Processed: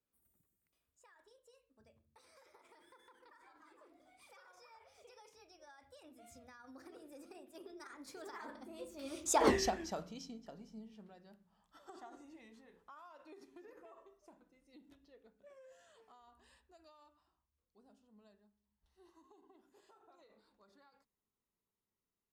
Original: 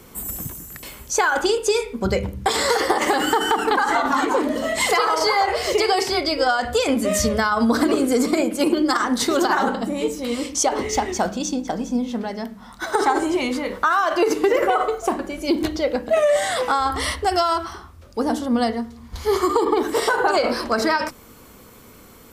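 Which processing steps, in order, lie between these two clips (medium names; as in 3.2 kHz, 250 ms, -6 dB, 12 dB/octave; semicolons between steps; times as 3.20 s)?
Doppler pass-by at 9.48 s, 42 m/s, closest 2.3 m; trim -2.5 dB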